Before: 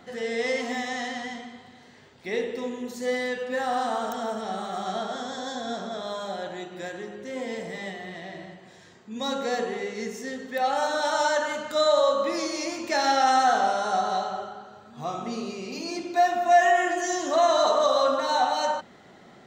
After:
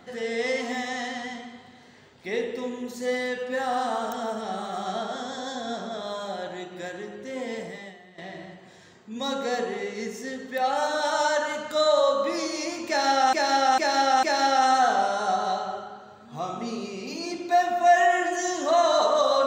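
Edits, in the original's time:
0:07.62–0:08.18: fade out quadratic, to −14 dB
0:12.88–0:13.33: repeat, 4 plays

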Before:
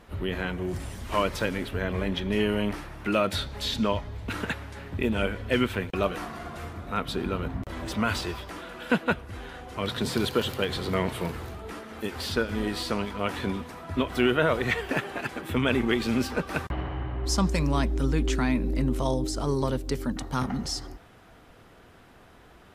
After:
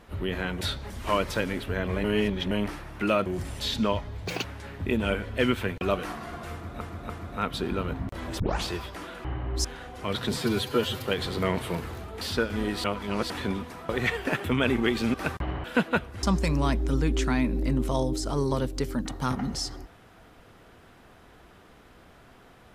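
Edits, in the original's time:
0:00.61–0:00.95: swap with 0:03.31–0:03.60
0:02.09–0:02.56: reverse
0:04.26–0:04.57: play speed 167%
0:06.64–0:06.93: repeat, 3 plays
0:07.94: tape start 0.27 s
0:08.79–0:09.38: swap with 0:16.94–0:17.34
0:10.11–0:10.56: time-stretch 1.5×
0:11.72–0:12.20: remove
0:12.83–0:13.29: reverse
0:13.88–0:14.53: remove
0:15.08–0:15.49: remove
0:16.19–0:16.44: remove

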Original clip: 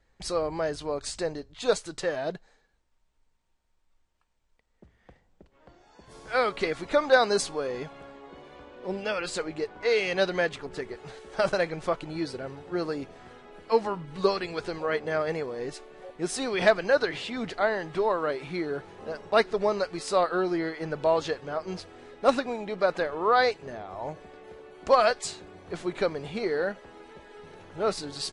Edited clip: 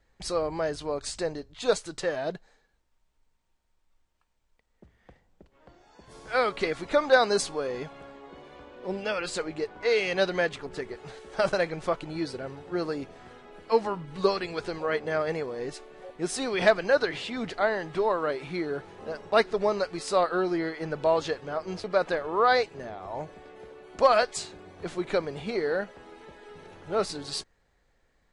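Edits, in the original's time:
0:21.84–0:22.72: remove

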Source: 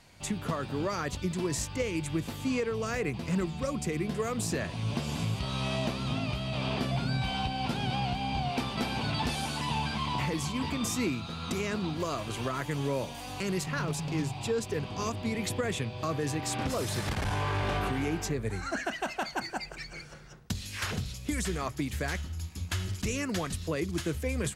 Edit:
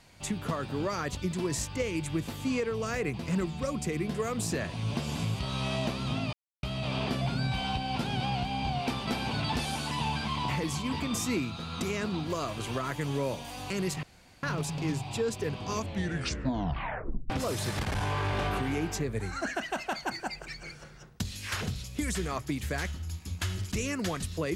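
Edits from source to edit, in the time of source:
0:06.33: splice in silence 0.30 s
0:13.73: splice in room tone 0.40 s
0:15.03: tape stop 1.57 s

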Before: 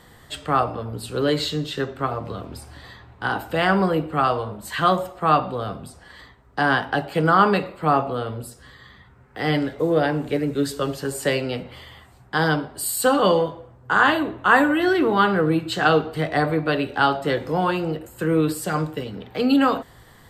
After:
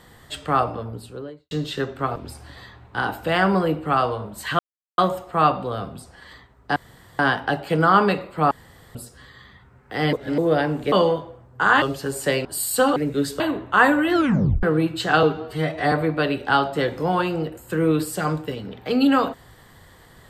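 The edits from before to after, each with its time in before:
0:00.67–0:01.51: fade out and dull
0:02.16–0:02.43: remove
0:04.86: splice in silence 0.39 s
0:06.64: splice in room tone 0.43 s
0:07.96–0:08.40: fill with room tone
0:09.58–0:09.83: reverse
0:10.37–0:10.81: swap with 0:13.22–0:14.12
0:11.44–0:12.71: remove
0:14.86: tape stop 0.49 s
0:15.95–0:16.41: time-stretch 1.5×

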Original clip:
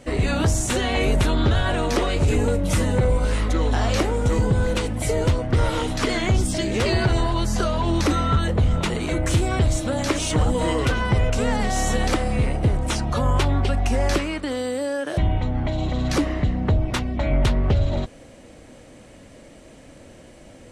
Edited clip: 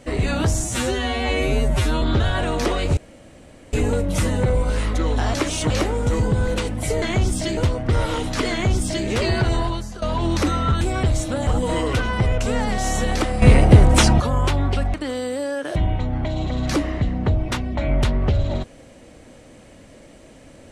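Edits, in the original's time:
0:00.64–0:01.33: time-stretch 2×
0:02.28: splice in room tone 0.76 s
0:06.15–0:06.70: duplicate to 0:05.21
0:07.31–0:07.66: fade out quadratic, to −14.5 dB
0:08.45–0:09.37: remove
0:10.03–0:10.39: move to 0:03.89
0:12.34–0:13.12: clip gain +10 dB
0:13.86–0:14.36: remove

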